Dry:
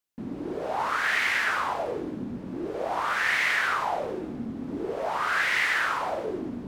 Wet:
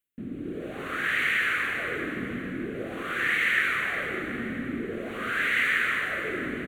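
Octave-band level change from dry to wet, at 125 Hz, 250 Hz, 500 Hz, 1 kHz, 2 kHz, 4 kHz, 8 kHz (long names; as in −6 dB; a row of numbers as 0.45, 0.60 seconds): +1.5, +0.5, −3.5, −7.5, +1.0, −1.5, −5.0 decibels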